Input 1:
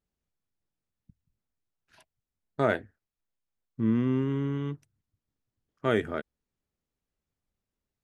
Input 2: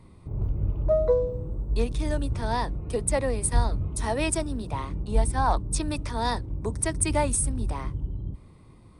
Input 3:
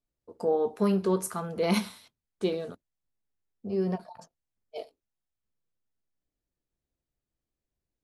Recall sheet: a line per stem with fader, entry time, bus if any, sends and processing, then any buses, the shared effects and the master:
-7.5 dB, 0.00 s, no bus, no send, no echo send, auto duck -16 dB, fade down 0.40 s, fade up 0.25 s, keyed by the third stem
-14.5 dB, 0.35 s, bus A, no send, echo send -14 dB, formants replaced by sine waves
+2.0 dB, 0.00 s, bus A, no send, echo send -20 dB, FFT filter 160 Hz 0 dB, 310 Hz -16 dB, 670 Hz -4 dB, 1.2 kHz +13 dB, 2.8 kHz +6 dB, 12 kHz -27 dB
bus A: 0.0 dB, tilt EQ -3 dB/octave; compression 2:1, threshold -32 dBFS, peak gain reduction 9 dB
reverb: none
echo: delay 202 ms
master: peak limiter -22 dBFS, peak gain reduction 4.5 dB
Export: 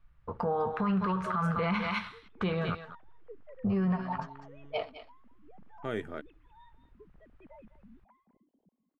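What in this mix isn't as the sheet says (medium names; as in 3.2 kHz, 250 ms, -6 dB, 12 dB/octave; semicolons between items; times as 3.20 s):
stem 2 -14.5 dB -> -25.5 dB; stem 3 +2.0 dB -> +14.0 dB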